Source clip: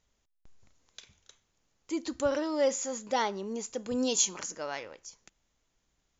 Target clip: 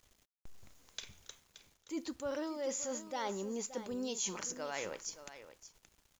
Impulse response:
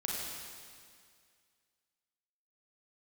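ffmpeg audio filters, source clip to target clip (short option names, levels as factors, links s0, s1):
-af "areverse,acompressor=threshold=0.00794:ratio=6,areverse,acrusher=bits=11:mix=0:aa=0.000001,aecho=1:1:574:0.224,volume=1.78"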